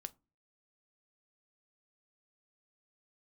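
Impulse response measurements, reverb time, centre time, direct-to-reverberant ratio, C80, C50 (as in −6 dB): non-exponential decay, 2 ms, 12.0 dB, 32.0 dB, 25.0 dB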